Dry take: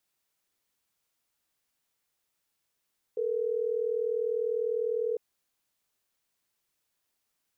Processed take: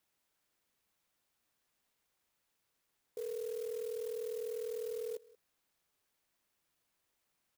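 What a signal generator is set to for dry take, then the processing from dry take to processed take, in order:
call progress tone ringback tone, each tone -29.5 dBFS
peak limiter -35 dBFS; delay 182 ms -22 dB; sampling jitter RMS 0.051 ms

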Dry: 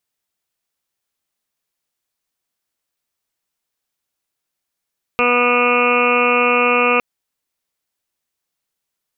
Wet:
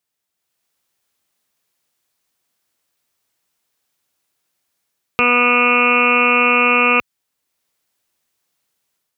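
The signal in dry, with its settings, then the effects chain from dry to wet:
steady additive tone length 1.81 s, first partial 244 Hz, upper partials 6/-1/-0.5/5.5/-4.5/-18/-13/-1.5/4/3/-12 dB, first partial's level -23.5 dB
level rider gain up to 7.5 dB; high-pass 60 Hz; dynamic bell 580 Hz, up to -7 dB, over -27 dBFS, Q 0.77

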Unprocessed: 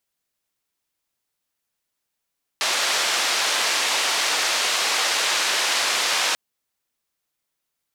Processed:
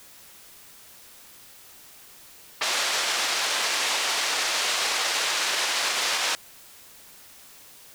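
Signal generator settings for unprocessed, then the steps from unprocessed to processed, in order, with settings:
noise band 560–5300 Hz, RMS -22 dBFS 3.74 s
level-controlled noise filter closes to 910 Hz, open at -21.5 dBFS; peak limiter -16 dBFS; added noise white -49 dBFS

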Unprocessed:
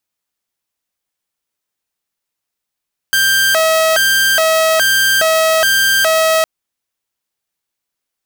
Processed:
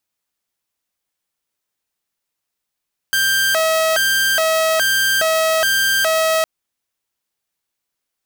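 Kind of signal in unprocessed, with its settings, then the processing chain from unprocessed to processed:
siren hi-lo 642–1580 Hz 1.2 per s saw -7.5 dBFS 3.31 s
peak limiter -11.5 dBFS

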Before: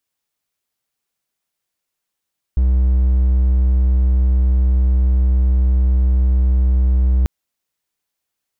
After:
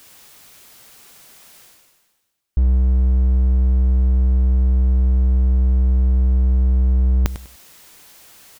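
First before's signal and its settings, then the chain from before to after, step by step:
tone triangle 63.5 Hz -9 dBFS 4.69 s
reverse; upward compressor, threshold -20 dBFS; reverse; feedback delay 99 ms, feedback 26%, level -12 dB

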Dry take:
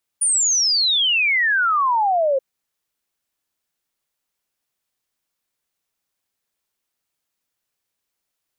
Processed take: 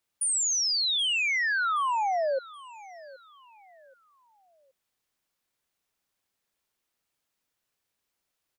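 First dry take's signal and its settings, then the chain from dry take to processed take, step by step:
log sweep 9.6 kHz -> 520 Hz 2.18 s -15 dBFS
treble shelf 5.1 kHz -4 dB; peak limiter -23.5 dBFS; feedback delay 775 ms, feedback 35%, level -19.5 dB

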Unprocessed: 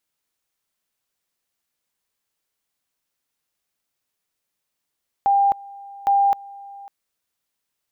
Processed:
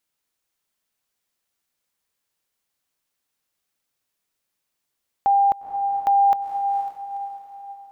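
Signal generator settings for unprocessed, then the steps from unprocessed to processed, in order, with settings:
two-level tone 798 Hz -13.5 dBFS, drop 22.5 dB, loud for 0.26 s, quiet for 0.55 s, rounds 2
echo that smears into a reverb 481 ms, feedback 42%, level -8 dB

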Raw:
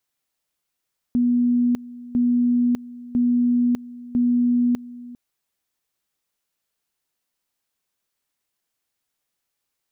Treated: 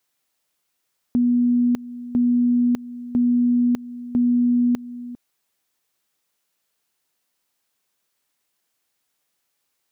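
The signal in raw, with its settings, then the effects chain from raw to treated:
two-level tone 243 Hz -15.5 dBFS, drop 19 dB, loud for 0.60 s, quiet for 0.40 s, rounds 4
bass shelf 91 Hz -10 dB; in parallel at -1 dB: compression, threshold -30 dBFS

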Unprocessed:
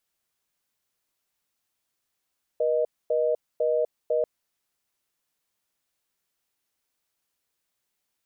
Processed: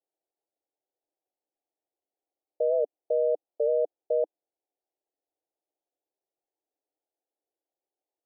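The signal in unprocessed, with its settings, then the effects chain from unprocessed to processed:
call progress tone reorder tone, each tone -23.5 dBFS 1.64 s
elliptic band-pass 300–800 Hz; warped record 78 rpm, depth 100 cents

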